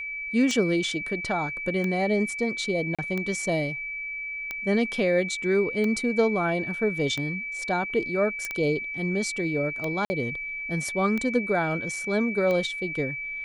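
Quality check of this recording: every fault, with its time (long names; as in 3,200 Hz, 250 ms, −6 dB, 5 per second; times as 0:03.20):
scratch tick 45 rpm −17 dBFS
whistle 2,300 Hz −31 dBFS
0:02.95–0:02.99: drop-out 36 ms
0:08.45: click −15 dBFS
0:10.05–0:10.10: drop-out 50 ms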